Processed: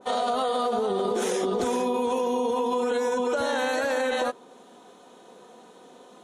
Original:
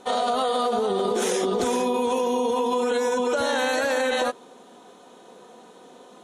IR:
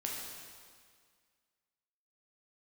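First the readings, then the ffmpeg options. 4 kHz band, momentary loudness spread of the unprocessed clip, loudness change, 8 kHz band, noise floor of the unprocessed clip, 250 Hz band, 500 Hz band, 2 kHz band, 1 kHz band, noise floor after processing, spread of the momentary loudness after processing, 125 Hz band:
-4.5 dB, 1 LU, -2.5 dB, -5.0 dB, -50 dBFS, -2.0 dB, -2.0 dB, -3.0 dB, -2.0 dB, -52 dBFS, 1 LU, n/a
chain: -af "adynamicequalizer=threshold=0.00891:dfrequency=1900:dqfactor=0.7:tfrequency=1900:tqfactor=0.7:attack=5:release=100:ratio=0.375:range=1.5:mode=cutabove:tftype=highshelf,volume=-2dB"

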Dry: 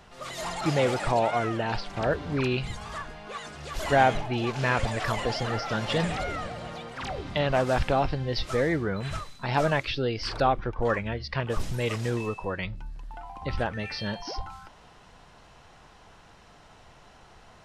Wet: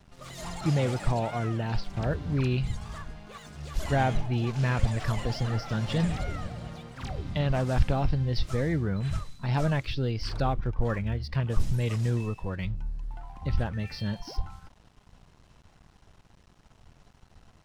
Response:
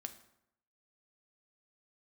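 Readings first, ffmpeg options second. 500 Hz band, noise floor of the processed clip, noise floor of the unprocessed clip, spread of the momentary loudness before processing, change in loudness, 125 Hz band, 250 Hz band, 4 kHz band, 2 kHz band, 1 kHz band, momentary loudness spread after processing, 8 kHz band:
-6.0 dB, -60 dBFS, -54 dBFS, 13 LU, -1.5 dB, +4.5 dB, 0.0 dB, -5.5 dB, -7.0 dB, -7.0 dB, 13 LU, -3.5 dB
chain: -af "bass=f=250:g=13,treble=f=4k:g=4,aeval=exprs='sgn(val(0))*max(abs(val(0))-0.00398,0)':c=same,volume=-7dB"

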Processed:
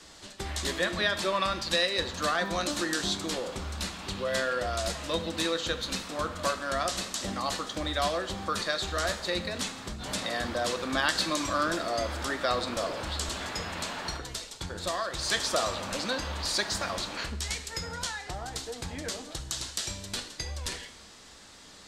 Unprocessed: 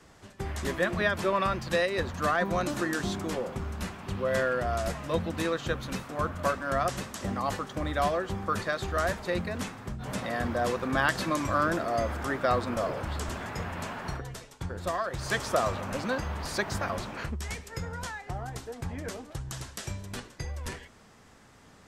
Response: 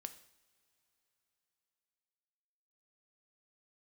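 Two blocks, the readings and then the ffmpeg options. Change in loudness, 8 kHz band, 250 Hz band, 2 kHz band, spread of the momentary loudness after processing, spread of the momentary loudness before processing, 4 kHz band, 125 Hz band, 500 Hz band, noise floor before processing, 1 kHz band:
+0.5 dB, +7.5 dB, -2.5 dB, 0.0 dB, 9 LU, 11 LU, +9.5 dB, -5.0 dB, -2.0 dB, -55 dBFS, -1.5 dB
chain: -filter_complex "[0:a]equalizer=f=125:t=o:w=1:g=-7,equalizer=f=4k:t=o:w=1:g=12,equalizer=f=8k:t=o:w=1:g=7[a];[1:a]atrim=start_sample=2205[b];[a][b]afir=irnorm=-1:irlink=0,asplit=2[c][d];[d]acompressor=threshold=-41dB:ratio=6,volume=0dB[e];[c][e]amix=inputs=2:normalize=0"

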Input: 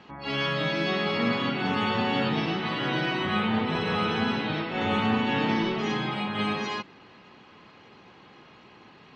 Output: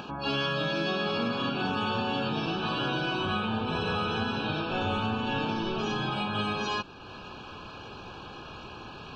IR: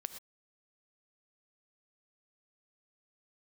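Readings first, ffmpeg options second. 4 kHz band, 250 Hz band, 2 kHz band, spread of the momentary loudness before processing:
-1.0 dB, -4.5 dB, -3.5 dB, 4 LU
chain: -af "acompressor=mode=upward:threshold=-40dB:ratio=2.5,asuperstop=centerf=2000:order=12:qfactor=3.5,acompressor=threshold=-31dB:ratio=5,asubboost=boost=5.5:cutoff=76,volume=5dB"

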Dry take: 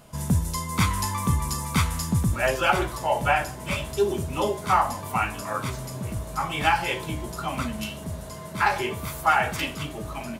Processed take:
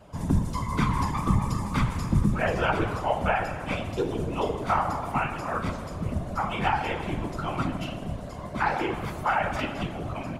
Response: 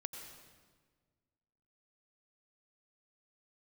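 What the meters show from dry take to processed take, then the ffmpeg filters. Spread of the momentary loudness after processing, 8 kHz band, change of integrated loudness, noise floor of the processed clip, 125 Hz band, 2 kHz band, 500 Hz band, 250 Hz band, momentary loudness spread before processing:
7 LU, -13.0 dB, -2.5 dB, -37 dBFS, -0.5 dB, -4.0 dB, -2.0 dB, +1.5 dB, 10 LU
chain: -filter_complex "[0:a]asplit=2[a][b];[1:a]atrim=start_sample=2205,highshelf=f=2.7k:g=-7.5[c];[b][c]afir=irnorm=-1:irlink=0,volume=3.5dB[d];[a][d]amix=inputs=2:normalize=0,acrossover=split=170|940|1900[e][f][g][h];[f]acompressor=threshold=-20dB:ratio=4[i];[g]acompressor=threshold=-22dB:ratio=4[j];[h]acompressor=threshold=-27dB:ratio=4[k];[e][i][j][k]amix=inputs=4:normalize=0,aemphasis=mode=reproduction:type=50fm,afftfilt=real='hypot(re,im)*cos(2*PI*random(0))':imag='hypot(re,im)*sin(2*PI*random(1))':win_size=512:overlap=0.75"

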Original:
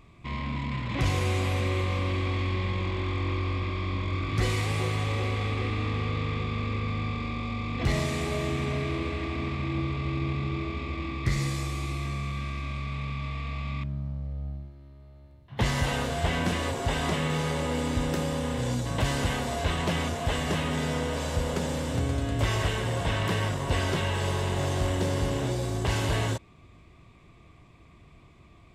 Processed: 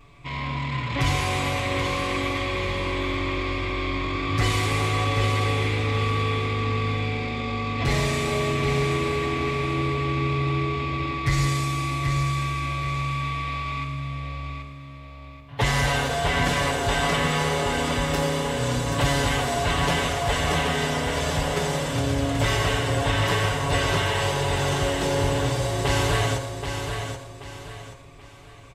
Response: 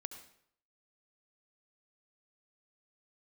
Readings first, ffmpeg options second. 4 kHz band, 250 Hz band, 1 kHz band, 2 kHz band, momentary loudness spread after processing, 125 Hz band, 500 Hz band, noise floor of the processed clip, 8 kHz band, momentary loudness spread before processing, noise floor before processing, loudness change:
+7.0 dB, +3.0 dB, +8.0 dB, +7.5 dB, 8 LU, +3.0 dB, +6.0 dB, -41 dBFS, +7.0 dB, 6 LU, -54 dBFS, +5.0 dB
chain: -filter_complex "[0:a]equalizer=f=200:t=o:w=1.6:g=-7.5,aecho=1:1:780|1560|2340|3120:0.447|0.152|0.0516|0.0176,asplit=2[a][b];[1:a]atrim=start_sample=2205,adelay=7[c];[b][c]afir=irnorm=-1:irlink=0,volume=8.5dB[d];[a][d]amix=inputs=2:normalize=0"

